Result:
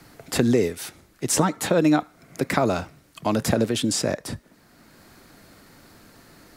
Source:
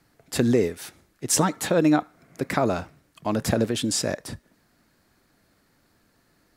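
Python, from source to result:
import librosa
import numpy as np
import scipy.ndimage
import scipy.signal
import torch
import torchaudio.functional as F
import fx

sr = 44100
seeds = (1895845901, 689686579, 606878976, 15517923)

y = fx.notch(x, sr, hz=1700.0, q=27.0)
y = fx.band_squash(y, sr, depth_pct=40)
y = y * librosa.db_to_amplitude(2.0)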